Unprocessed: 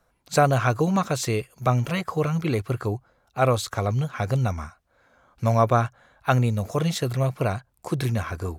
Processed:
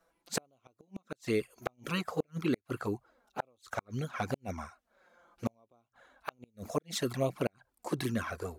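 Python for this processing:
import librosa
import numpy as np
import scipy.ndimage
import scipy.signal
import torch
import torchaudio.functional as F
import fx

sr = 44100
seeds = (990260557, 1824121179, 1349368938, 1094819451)

y = fx.env_flanger(x, sr, rest_ms=6.1, full_db=-18.0)
y = fx.low_shelf_res(y, sr, hz=180.0, db=-9.5, q=1.5)
y = fx.gate_flip(y, sr, shuts_db=-16.0, range_db=-42)
y = y * librosa.db_to_amplitude(-2.0)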